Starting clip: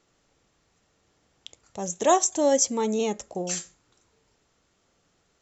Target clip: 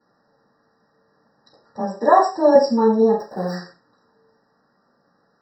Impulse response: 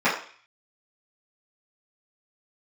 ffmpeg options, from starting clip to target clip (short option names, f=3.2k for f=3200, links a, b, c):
-filter_complex "[0:a]asettb=1/sr,asplit=3[a][b][c];[a]atrim=end=1.794[d];[b]atrim=start=1.79:end=2.55,asetpts=PTS-STARTPTS,afade=t=in:d=0.004:c=qsin,afade=t=out:st=0.756:d=0.004:c=qsin,afreqshift=16[e];[c]atrim=start=2.546[f];[d][e]acrossfade=d=0.004:c1=hsin:c2=qsin[g];[g][f]acrossfade=d=0.004:c1=qsin:c2=hsin,asettb=1/sr,asplit=3[h][i][j];[h]atrim=end=3.144[k];[i]atrim=start=3.14:end=3.55,asetpts=PTS-STARTPTS,afade=t=in:d=0.004:c=qsin,afade=t=out:st=0.406:d=0.004:c=qsin,acrusher=bits=7:dc=4:mix=0:aa=0.000001[l];[j]atrim=start=3.546[m];[k][l]acrossfade=d=0.004:c1=hsin:c2=qsin[n];[n][m]acrossfade=d=0.004:c1=qsin:c2=hsin[o];[1:a]atrim=start_sample=2205,afade=t=out:st=0.24:d=0.01,atrim=end_sample=11025[p];[o][p]afir=irnorm=-1:irlink=0,afftfilt=real='re*eq(mod(floor(b*sr/1024/1900),2),0)':imag='im*eq(mod(floor(b*sr/1024/1900),2),0)':win_size=1024:overlap=0.75,volume=-10.5dB"